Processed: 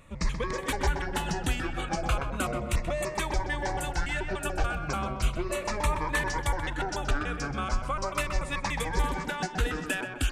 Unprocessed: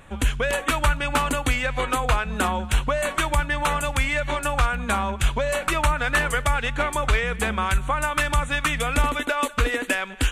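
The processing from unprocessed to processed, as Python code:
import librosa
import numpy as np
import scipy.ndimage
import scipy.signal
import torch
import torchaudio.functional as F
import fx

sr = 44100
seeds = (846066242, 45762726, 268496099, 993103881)

y = fx.pitch_trill(x, sr, semitones=-7.5, every_ms=145)
y = fx.echo_tape(y, sr, ms=128, feedback_pct=46, wet_db=-4.0, lp_hz=1700.0, drive_db=7.0, wow_cents=33)
y = fx.notch_cascade(y, sr, direction='falling', hz=0.36)
y = y * librosa.db_to_amplitude(-5.5)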